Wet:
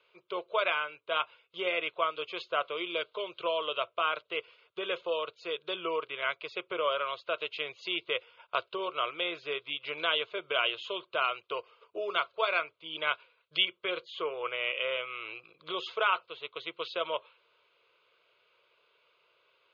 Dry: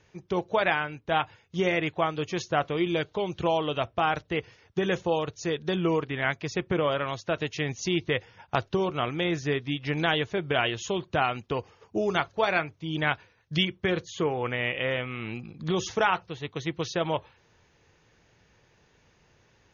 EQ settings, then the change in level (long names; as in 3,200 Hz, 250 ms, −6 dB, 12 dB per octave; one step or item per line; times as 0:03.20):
high-pass filter 630 Hz 12 dB per octave
Butterworth low-pass 5,400 Hz 36 dB per octave
phaser with its sweep stopped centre 1,200 Hz, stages 8
+1.0 dB